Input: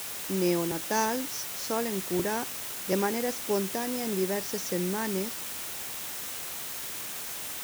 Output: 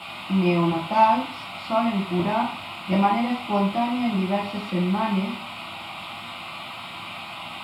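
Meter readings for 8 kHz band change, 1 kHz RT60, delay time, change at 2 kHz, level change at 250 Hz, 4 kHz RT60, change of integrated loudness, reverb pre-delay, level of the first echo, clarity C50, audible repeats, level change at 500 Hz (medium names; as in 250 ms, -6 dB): under -15 dB, 0.45 s, no echo, +5.0 dB, +8.5 dB, 0.35 s, +5.5 dB, 5 ms, no echo, 6.5 dB, no echo, +2.5 dB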